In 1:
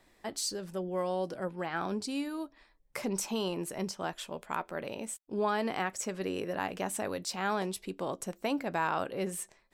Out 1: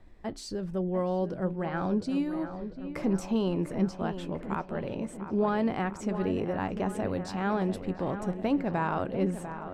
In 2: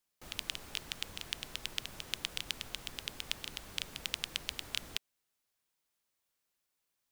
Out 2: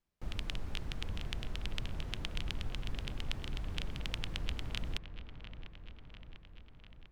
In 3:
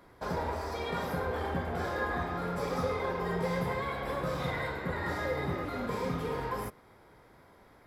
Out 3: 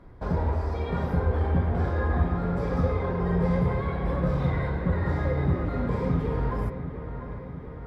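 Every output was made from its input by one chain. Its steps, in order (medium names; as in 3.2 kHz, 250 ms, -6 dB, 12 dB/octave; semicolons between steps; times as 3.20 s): RIAA curve playback; on a send: feedback echo behind a low-pass 697 ms, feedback 64%, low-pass 2.8 kHz, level -10.5 dB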